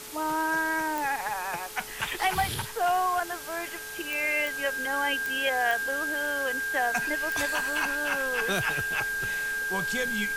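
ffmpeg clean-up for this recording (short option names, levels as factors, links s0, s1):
-af "adeclick=t=4,bandreject=f=429.5:t=h:w=4,bandreject=f=859:t=h:w=4,bandreject=f=1288.5:t=h:w=4,bandreject=f=1600:w=30,afftdn=nr=30:nf=-37"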